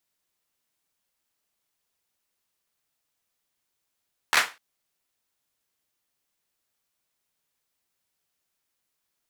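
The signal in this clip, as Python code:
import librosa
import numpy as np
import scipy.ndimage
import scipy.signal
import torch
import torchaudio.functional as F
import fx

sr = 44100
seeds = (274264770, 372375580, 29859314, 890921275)

y = fx.drum_clap(sr, seeds[0], length_s=0.25, bursts=4, spacing_ms=13, hz=1500.0, decay_s=0.27)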